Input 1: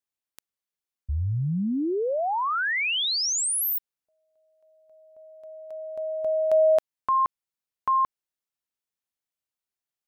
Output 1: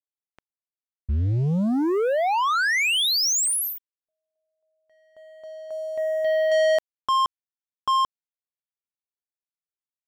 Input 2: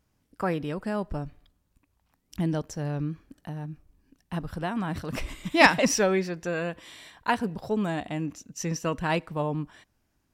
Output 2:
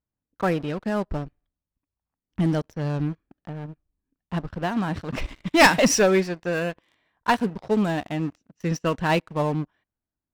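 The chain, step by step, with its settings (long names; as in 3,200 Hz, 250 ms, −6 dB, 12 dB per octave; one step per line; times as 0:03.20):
low-pass that shuts in the quiet parts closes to 1,600 Hz, open at −21.5 dBFS
leveller curve on the samples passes 3
in parallel at −11 dB: hard clipping −17.5 dBFS
on the sum: expander for the loud parts 1.5 to 1, over −26 dBFS
level −4 dB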